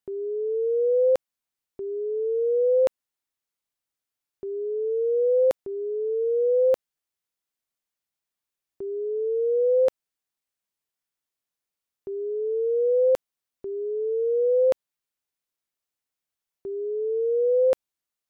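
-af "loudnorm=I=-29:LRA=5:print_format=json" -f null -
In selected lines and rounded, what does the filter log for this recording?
"input_i" : "-24.4",
"input_tp" : "-14.3",
"input_lra" : "3.1",
"input_thresh" : "-34.8",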